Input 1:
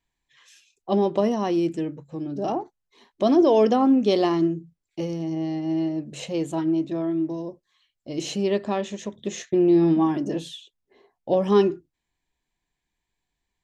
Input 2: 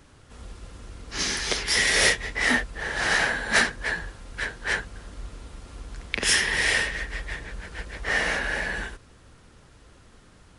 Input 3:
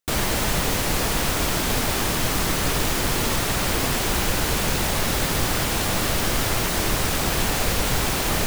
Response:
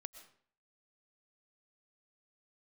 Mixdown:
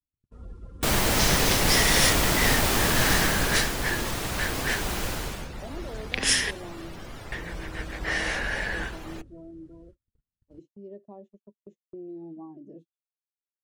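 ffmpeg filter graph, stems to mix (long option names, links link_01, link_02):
-filter_complex "[0:a]acrossover=split=410|870[link_01][link_02][link_03];[link_01]acompressor=threshold=-26dB:ratio=4[link_04];[link_02]acompressor=threshold=-25dB:ratio=4[link_05];[link_03]acompressor=threshold=-41dB:ratio=4[link_06];[link_04][link_05][link_06]amix=inputs=3:normalize=0,adelay=2400,volume=-18dB[link_07];[1:a]acrossover=split=150|3000[link_08][link_09][link_10];[link_09]acompressor=threshold=-27dB:ratio=6[link_11];[link_08][link_11][link_10]amix=inputs=3:normalize=0,volume=0dB,asplit=3[link_12][link_13][link_14];[link_12]atrim=end=6.51,asetpts=PTS-STARTPTS,afade=type=out:start_time=6.506:duration=0.004:curve=hsin[link_15];[link_13]atrim=start=6.51:end=7.32,asetpts=PTS-STARTPTS,volume=0[link_16];[link_14]atrim=start=7.32,asetpts=PTS-STARTPTS,afade=type=in:duration=0.004:curve=hsin[link_17];[link_15][link_16][link_17]concat=n=3:v=0:a=1[link_18];[2:a]adelay=750,afade=type=out:start_time=3.06:duration=0.69:silence=0.446684,afade=type=out:start_time=5.07:duration=0.42:silence=0.334965[link_19];[link_07][link_18][link_19]amix=inputs=3:normalize=0,afftdn=noise_reduction=22:noise_floor=-45,agate=range=-39dB:threshold=-49dB:ratio=16:detection=peak"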